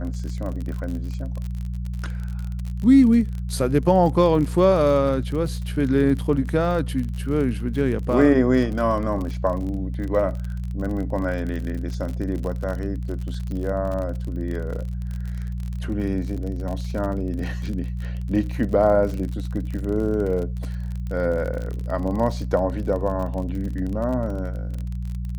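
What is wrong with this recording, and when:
crackle 43 per s -29 dBFS
hum 60 Hz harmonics 3 -28 dBFS

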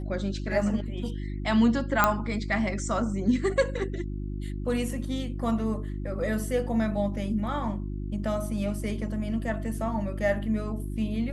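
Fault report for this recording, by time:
hum 50 Hz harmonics 7 -33 dBFS
2.04 s: pop -6 dBFS

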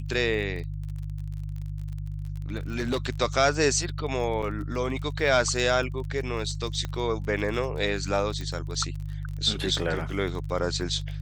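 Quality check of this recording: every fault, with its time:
crackle 34 per s -35 dBFS
hum 50 Hz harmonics 3 -33 dBFS
2.72–3.05 s: clipped -22 dBFS
4.42–4.43 s: dropout 6 ms
6.85 s: pop -18 dBFS
8.41 s: pop

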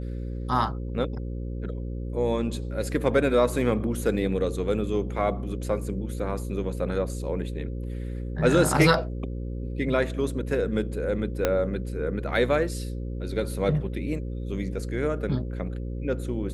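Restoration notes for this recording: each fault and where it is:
buzz 60 Hz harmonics 9 -32 dBFS
11.45 s: pop -8 dBFS

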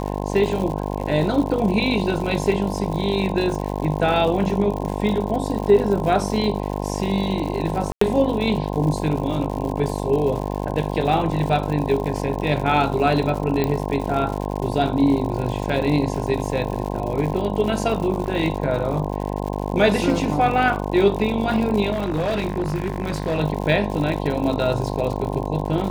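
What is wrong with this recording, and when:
buzz 50 Hz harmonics 21 -26 dBFS
crackle 120 per s -28 dBFS
7.92–8.01 s: dropout 94 ms
13.64 s: pop -9 dBFS
18.26 s: dropout 2.8 ms
21.92–23.40 s: clipped -18.5 dBFS

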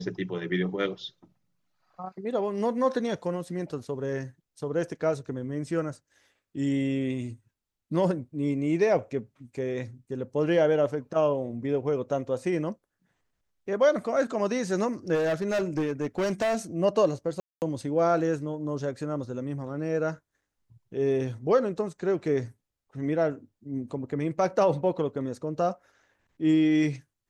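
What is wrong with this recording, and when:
15.14–16.56 s: clipped -23 dBFS
17.40–17.62 s: dropout 219 ms

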